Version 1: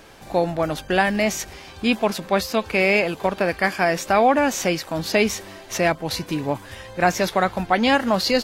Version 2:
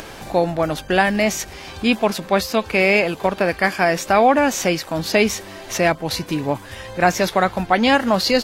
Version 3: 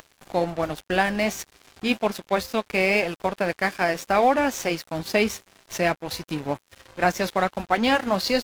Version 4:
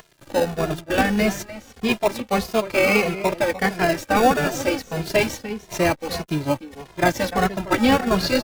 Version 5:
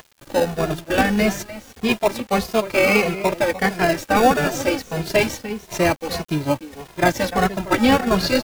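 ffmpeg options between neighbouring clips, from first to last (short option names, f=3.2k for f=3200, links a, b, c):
-af "acompressor=mode=upward:threshold=-30dB:ratio=2.5,volume=2.5dB"
-af "flanger=delay=1.8:depth=5.1:regen=-74:speed=1.3:shape=triangular,aeval=exprs='sgn(val(0))*max(abs(val(0))-0.0168,0)':c=same"
-filter_complex "[0:a]asplit=2[a][b];[b]acrusher=samples=33:mix=1:aa=0.000001:lfo=1:lforange=19.8:lforate=0.28,volume=-3.5dB[c];[a][c]amix=inputs=2:normalize=0,asplit=2[d][e];[e]adelay=297.4,volume=-13dB,highshelf=f=4k:g=-6.69[f];[d][f]amix=inputs=2:normalize=0,asplit=2[g][h];[h]adelay=2.4,afreqshift=-1.6[i];[g][i]amix=inputs=2:normalize=1,volume=3.5dB"
-af "acrusher=bits=7:mix=0:aa=0.000001,volume=1.5dB"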